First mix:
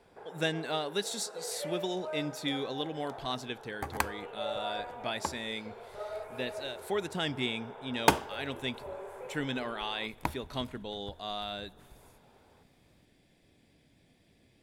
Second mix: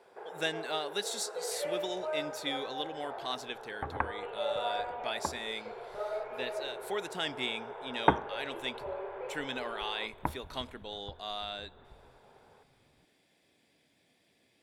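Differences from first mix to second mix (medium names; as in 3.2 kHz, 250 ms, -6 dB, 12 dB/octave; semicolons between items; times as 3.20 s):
speech: add high-pass 530 Hz 6 dB/octave; first sound: send +11.5 dB; second sound: add low-pass 1.8 kHz 24 dB/octave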